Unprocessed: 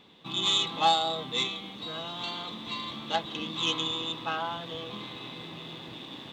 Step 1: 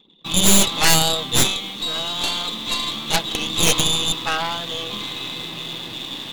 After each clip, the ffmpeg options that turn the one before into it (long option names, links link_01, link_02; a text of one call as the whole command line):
ffmpeg -i in.wav -af "anlmdn=0.00158,crystalizer=i=4:c=0,aeval=exprs='0.531*(cos(1*acos(clip(val(0)/0.531,-1,1)))-cos(1*PI/2))+0.106*(cos(3*acos(clip(val(0)/0.531,-1,1)))-cos(3*PI/2))+0.266*(cos(6*acos(clip(val(0)/0.531,-1,1)))-cos(6*PI/2))+0.211*(cos(7*acos(clip(val(0)/0.531,-1,1)))-cos(7*PI/2))':channel_layout=same,volume=-1dB" out.wav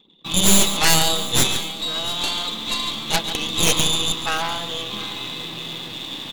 ffmpeg -i in.wav -af "aecho=1:1:140|694:0.266|0.126,volume=-1dB" out.wav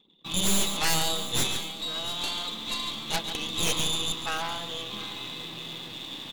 ffmpeg -i in.wav -af "asoftclip=type=tanh:threshold=-8dB,volume=-7dB" out.wav